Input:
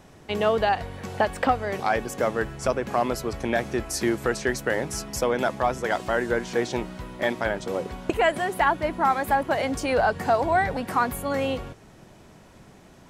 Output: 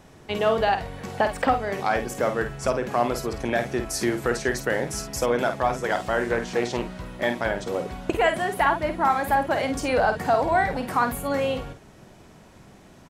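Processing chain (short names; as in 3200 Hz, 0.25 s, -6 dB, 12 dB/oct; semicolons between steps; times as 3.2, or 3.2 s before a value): doubler 50 ms -8 dB; 6.22–7.06 Doppler distortion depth 0.19 ms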